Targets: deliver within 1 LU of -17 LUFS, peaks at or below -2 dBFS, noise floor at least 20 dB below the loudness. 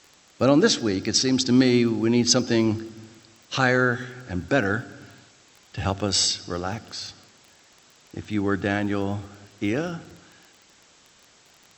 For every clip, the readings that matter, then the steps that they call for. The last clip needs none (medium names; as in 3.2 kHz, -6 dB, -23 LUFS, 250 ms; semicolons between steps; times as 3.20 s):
tick rate 19 per s; loudness -23.0 LUFS; peak level -4.5 dBFS; loudness target -17.0 LUFS
-> de-click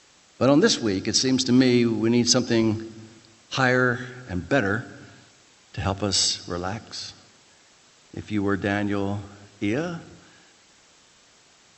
tick rate 0 per s; loudness -23.0 LUFS; peak level -4.5 dBFS; loudness target -17.0 LUFS
-> trim +6 dB; peak limiter -2 dBFS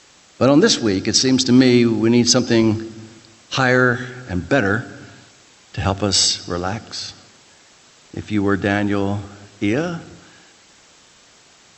loudness -17.5 LUFS; peak level -2.0 dBFS; noise floor -50 dBFS